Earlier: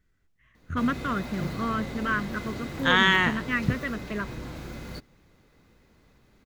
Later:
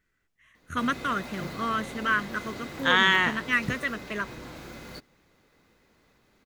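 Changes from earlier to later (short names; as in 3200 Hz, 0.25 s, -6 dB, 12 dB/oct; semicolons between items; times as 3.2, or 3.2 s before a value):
first voice: remove tape spacing loss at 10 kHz 21 dB; master: add low shelf 200 Hz -10.5 dB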